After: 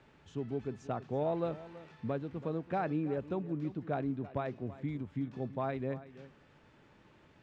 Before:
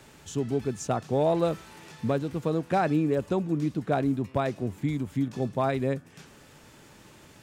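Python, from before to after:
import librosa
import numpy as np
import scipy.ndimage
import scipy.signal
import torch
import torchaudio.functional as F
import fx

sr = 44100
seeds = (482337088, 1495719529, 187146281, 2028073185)

y = scipy.signal.sosfilt(scipy.signal.butter(2, 2900.0, 'lowpass', fs=sr, output='sos'), x)
y = y + 10.0 ** (-16.5 / 20.0) * np.pad(y, (int(329 * sr / 1000.0), 0))[:len(y)]
y = y * librosa.db_to_amplitude(-9.0)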